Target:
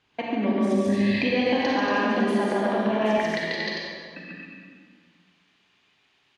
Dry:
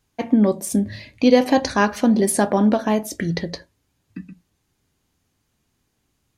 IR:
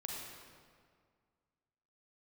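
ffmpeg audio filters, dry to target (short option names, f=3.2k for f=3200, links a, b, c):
-filter_complex "[0:a]aecho=1:1:139.9|233.2:0.891|0.562,acompressor=threshold=-24dB:ratio=3,asetnsamples=n=441:p=0,asendcmd='3.18 highpass f 1400',highpass=f=290:p=1,alimiter=limit=-21dB:level=0:latency=1:release=214,lowpass=f=3k:t=q:w=1.8[a];[1:a]atrim=start_sample=2205[b];[a][b]afir=irnorm=-1:irlink=0,volume=8.5dB"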